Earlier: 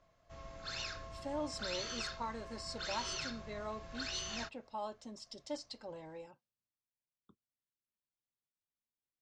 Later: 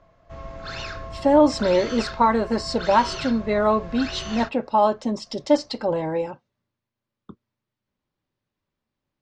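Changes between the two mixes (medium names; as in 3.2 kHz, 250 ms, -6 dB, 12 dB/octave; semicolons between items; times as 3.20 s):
speech +10.5 dB; master: remove pre-emphasis filter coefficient 0.8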